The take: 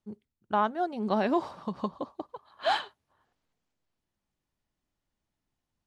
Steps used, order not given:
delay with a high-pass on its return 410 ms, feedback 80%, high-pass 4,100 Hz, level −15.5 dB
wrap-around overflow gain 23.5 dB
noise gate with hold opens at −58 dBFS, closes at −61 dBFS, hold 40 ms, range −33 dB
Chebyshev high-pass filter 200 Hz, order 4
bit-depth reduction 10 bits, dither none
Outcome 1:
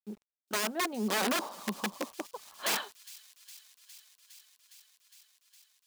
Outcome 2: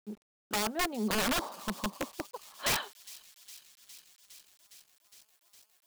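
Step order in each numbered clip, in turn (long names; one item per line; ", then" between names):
wrap-around overflow, then Chebyshev high-pass filter, then noise gate with hold, then bit-depth reduction, then delay with a high-pass on its return
Chebyshev high-pass filter, then wrap-around overflow, then delay with a high-pass on its return, then noise gate with hold, then bit-depth reduction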